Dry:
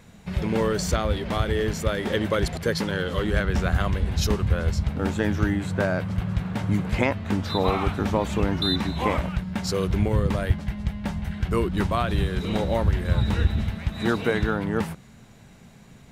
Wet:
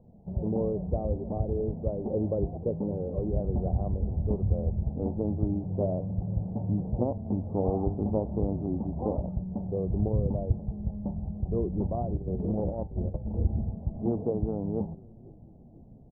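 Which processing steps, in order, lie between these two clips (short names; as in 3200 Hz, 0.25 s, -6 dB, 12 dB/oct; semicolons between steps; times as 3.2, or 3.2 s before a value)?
steep low-pass 780 Hz 48 dB/oct; 12.17–13.34 negative-ratio compressor -26 dBFS, ratio -0.5; flange 0.58 Hz, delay 8 ms, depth 2.5 ms, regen +83%; on a send: frequency-shifting echo 0.494 s, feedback 64%, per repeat -59 Hz, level -23 dB; on the sum: Doppler distortion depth 0.19 ms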